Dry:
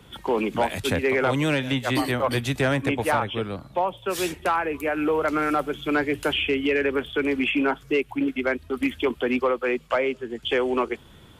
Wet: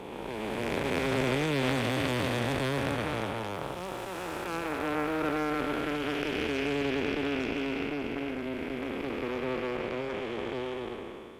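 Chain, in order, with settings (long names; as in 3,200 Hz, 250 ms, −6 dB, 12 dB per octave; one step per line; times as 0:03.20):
spectrum smeared in time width 889 ms
harmonic generator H 3 −13 dB, 6 −26 dB, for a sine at −15.5 dBFS
0:03.50–0:05.61: surface crackle 350 per second −50 dBFS
level +4 dB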